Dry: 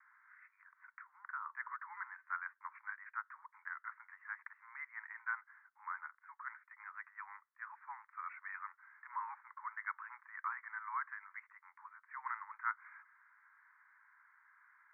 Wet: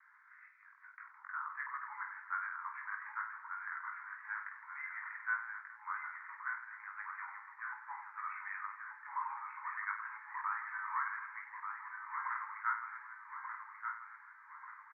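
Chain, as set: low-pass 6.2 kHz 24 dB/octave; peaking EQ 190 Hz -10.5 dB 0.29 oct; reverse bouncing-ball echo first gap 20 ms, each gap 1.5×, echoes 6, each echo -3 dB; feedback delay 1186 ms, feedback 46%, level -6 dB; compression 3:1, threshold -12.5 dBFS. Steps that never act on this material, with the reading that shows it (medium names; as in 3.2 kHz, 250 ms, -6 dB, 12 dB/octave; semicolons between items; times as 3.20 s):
low-pass 6.2 kHz: input has nothing above 2.6 kHz; peaking EQ 190 Hz: input has nothing below 760 Hz; compression, threshold -12.5 dBFS: peak at its input -23.0 dBFS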